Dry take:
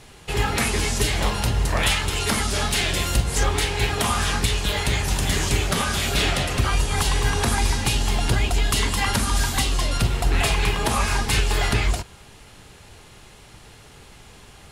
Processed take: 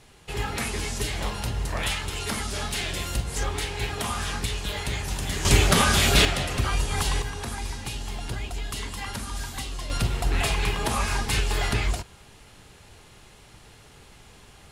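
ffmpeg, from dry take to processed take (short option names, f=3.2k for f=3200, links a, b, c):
-af "asetnsamples=n=441:p=0,asendcmd='5.45 volume volume 3.5dB;6.25 volume volume -4dB;7.22 volume volume -11.5dB;9.9 volume volume -4dB',volume=-7dB"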